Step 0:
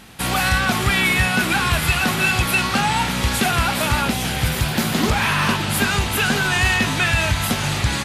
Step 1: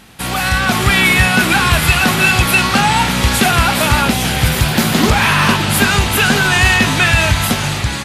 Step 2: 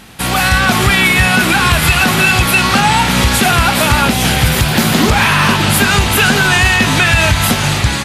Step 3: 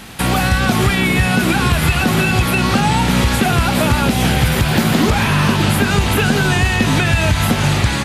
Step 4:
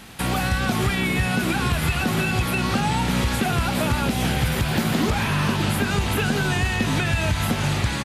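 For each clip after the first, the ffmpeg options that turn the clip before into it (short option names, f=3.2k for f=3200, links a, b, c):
-af "dynaudnorm=f=180:g=7:m=8dB,volume=1dB"
-af "alimiter=limit=-6dB:level=0:latency=1:release=187,volume=4.5dB"
-filter_complex "[0:a]acrossover=split=600|3000[a][b][c];[a]acompressor=threshold=-15dB:ratio=4[d];[b]acompressor=threshold=-25dB:ratio=4[e];[c]acompressor=threshold=-30dB:ratio=4[f];[d][e][f]amix=inputs=3:normalize=0,volume=3dB"
-af "aecho=1:1:407:0.0631,volume=-7.5dB"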